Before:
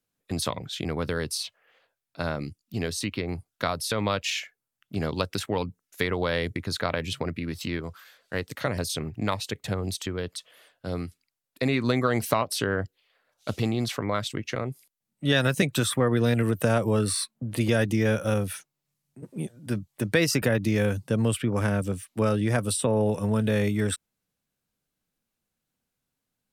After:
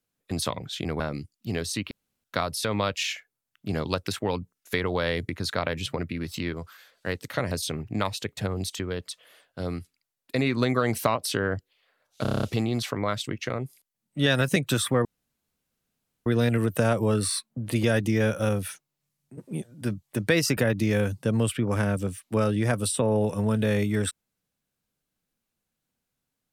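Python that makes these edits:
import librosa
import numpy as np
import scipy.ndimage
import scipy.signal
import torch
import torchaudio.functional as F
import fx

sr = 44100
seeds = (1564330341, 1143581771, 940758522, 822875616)

y = fx.edit(x, sr, fx.cut(start_s=1.0, length_s=1.27),
    fx.room_tone_fill(start_s=3.18, length_s=0.33),
    fx.stutter(start_s=13.49, slice_s=0.03, count=8),
    fx.insert_room_tone(at_s=16.11, length_s=1.21), tone=tone)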